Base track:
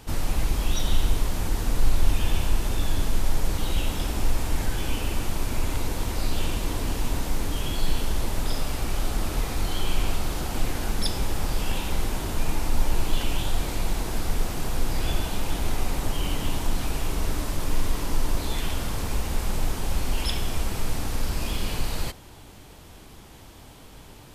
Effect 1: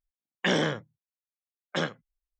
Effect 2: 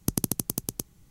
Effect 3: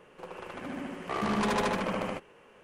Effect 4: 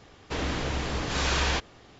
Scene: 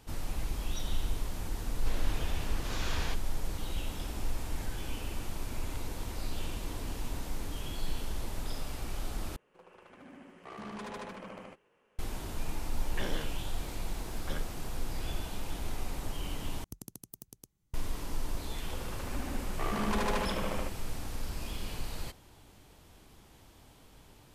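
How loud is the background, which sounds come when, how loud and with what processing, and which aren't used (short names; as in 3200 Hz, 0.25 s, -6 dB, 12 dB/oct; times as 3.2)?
base track -10.5 dB
1.55 add 4 -12 dB
9.36 replace with 3 -14 dB
12.53 add 1 -14 dB + upward compressor, threshold -29 dBFS
16.64 replace with 2 -11 dB + spectral noise reduction 9 dB
18.5 add 3 -4 dB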